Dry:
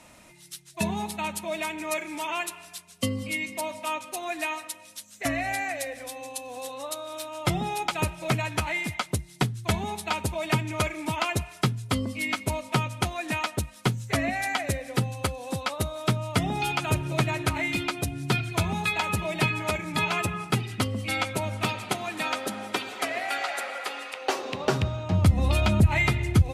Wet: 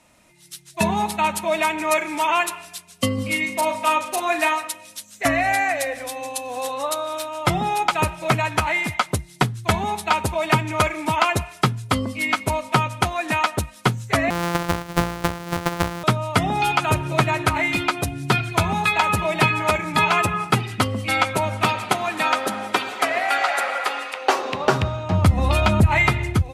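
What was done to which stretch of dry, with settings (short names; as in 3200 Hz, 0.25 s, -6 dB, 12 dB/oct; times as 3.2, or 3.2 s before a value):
3.14–4.53 doubler 38 ms -7 dB
14.3–16.04 sample sorter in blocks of 256 samples
whole clip: AGC gain up to 11.5 dB; dynamic EQ 1100 Hz, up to +7 dB, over -33 dBFS, Q 0.75; gain -5 dB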